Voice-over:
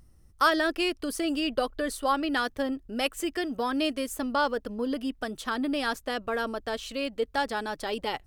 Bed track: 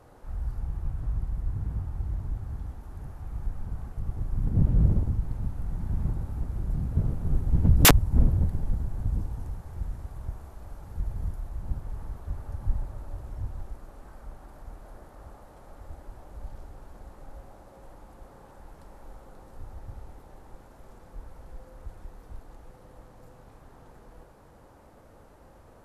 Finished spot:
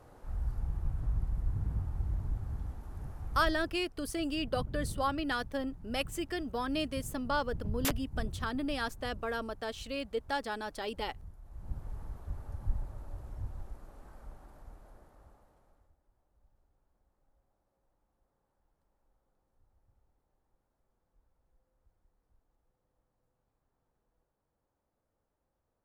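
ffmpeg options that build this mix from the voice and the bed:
-filter_complex "[0:a]adelay=2950,volume=-6dB[a];[1:a]volume=9dB,afade=t=out:st=3.42:d=0.33:silence=0.188365,afade=t=in:st=11.42:d=0.42:silence=0.266073,afade=t=out:st=14.24:d=1.71:silence=0.0630957[b];[a][b]amix=inputs=2:normalize=0"

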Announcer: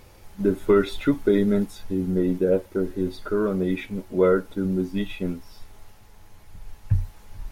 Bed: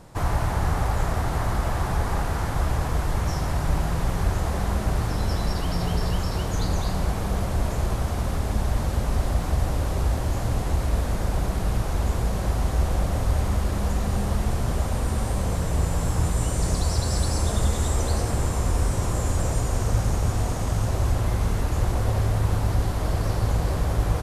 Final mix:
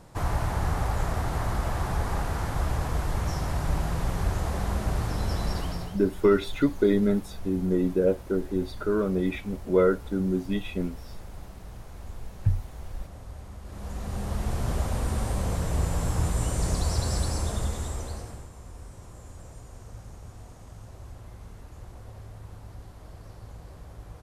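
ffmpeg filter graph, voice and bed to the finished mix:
-filter_complex "[0:a]adelay=5550,volume=-2dB[a];[1:a]volume=12.5dB,afade=t=out:st=5.57:d=0.42:silence=0.16788,afade=t=in:st=13.62:d=1.09:silence=0.158489,afade=t=out:st=17.07:d=1.41:silence=0.125893[b];[a][b]amix=inputs=2:normalize=0"

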